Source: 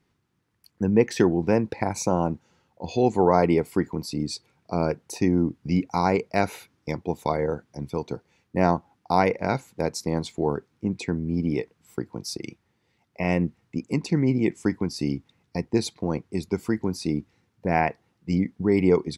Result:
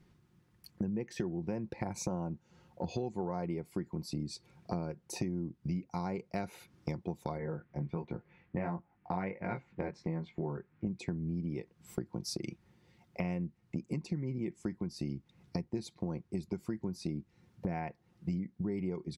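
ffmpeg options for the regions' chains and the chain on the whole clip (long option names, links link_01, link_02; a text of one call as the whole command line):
ffmpeg -i in.wav -filter_complex "[0:a]asettb=1/sr,asplit=3[link_01][link_02][link_03];[link_01]atrim=end=7.384[link_04];[link_02]atrim=start=7.38:end=10.87,asetpts=PTS-STARTPTS,afade=type=in:duration=0.004:curve=qsin,afade=type=out:start_time=3.486:duration=0.004:curve=qsin,flanger=delay=17.5:depth=4.3:speed=1.4,lowpass=frequency=2100:width_type=q:width=2[link_05];[link_03]atrim=start=10.866[link_06];[link_04][link_05]acrossfade=duration=0.004:curve1=hsin:curve2=qsin[link_07];[link_07][link_06]acrossfade=duration=0.004:curve1=qsin:curve2=hsin,lowshelf=frequency=250:gain=10,aecho=1:1:5.6:0.37,acompressor=threshold=-34dB:ratio=8" out.wav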